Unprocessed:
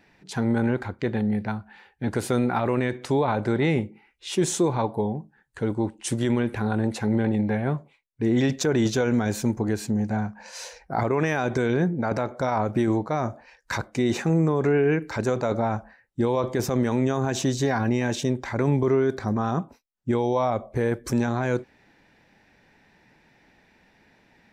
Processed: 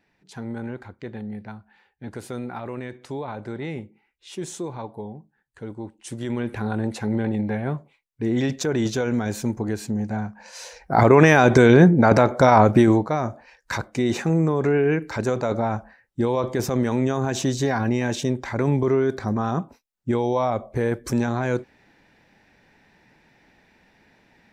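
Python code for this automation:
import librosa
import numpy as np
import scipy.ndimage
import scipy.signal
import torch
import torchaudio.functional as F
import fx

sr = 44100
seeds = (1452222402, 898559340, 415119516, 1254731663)

y = fx.gain(x, sr, db=fx.line((6.03, -9.0), (6.52, -1.0), (10.64, -1.0), (11.07, 10.5), (12.65, 10.5), (13.23, 1.0)))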